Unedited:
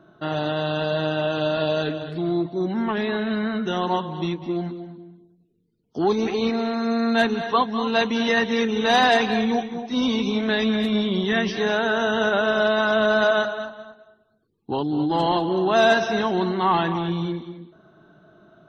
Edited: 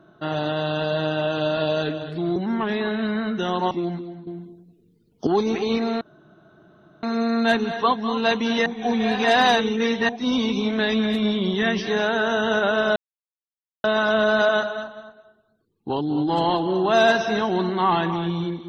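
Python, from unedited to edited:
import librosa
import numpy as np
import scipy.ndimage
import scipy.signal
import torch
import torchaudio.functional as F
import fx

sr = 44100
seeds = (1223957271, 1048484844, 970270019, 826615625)

y = fx.edit(x, sr, fx.cut(start_s=2.36, length_s=0.28),
    fx.cut(start_s=3.99, length_s=0.44),
    fx.clip_gain(start_s=4.99, length_s=1.0, db=9.5),
    fx.insert_room_tone(at_s=6.73, length_s=1.02),
    fx.reverse_span(start_s=8.36, length_s=1.43),
    fx.insert_silence(at_s=12.66, length_s=0.88), tone=tone)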